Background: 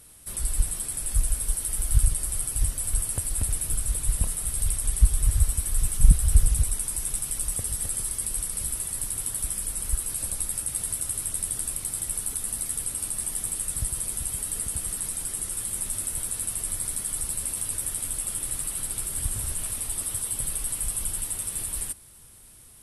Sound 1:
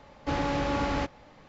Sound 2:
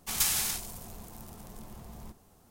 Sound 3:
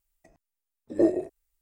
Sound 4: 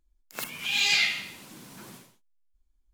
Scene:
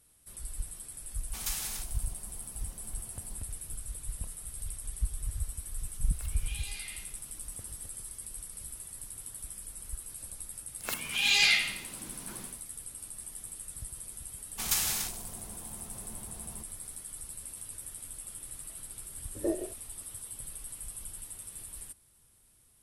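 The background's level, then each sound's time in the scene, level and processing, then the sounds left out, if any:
background −13.5 dB
0:01.26: mix in 2 −8 dB
0:05.82: mix in 4 −16 dB + brickwall limiter −20 dBFS
0:10.50: mix in 4 −0.5 dB
0:14.51: mix in 2 −1.5 dB
0:18.45: mix in 3 −7.5 dB + low-shelf EQ 200 Hz −10 dB
not used: 1

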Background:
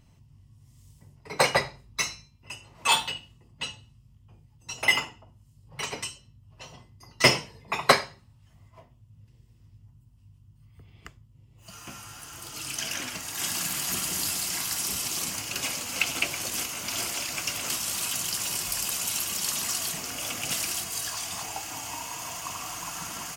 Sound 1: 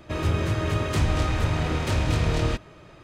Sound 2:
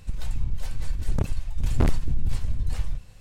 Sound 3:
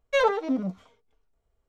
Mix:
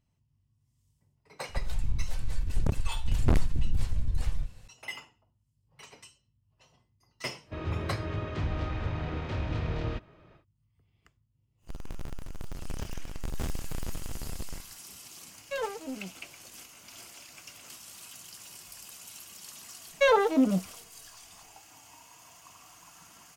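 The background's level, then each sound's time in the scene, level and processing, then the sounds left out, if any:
background −17.5 dB
0:01.48: mix in 2 −2.5 dB
0:07.42: mix in 1 −8.5 dB, fades 0.10 s + high-frequency loss of the air 190 metres
0:11.61: mix in 2 −15.5 dB, fades 0.10 s + each half-wave held at its own peak
0:15.38: mix in 3 −11.5 dB + highs frequency-modulated by the lows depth 0.45 ms
0:19.88: mix in 3 −13 dB + boost into a limiter +16.5 dB

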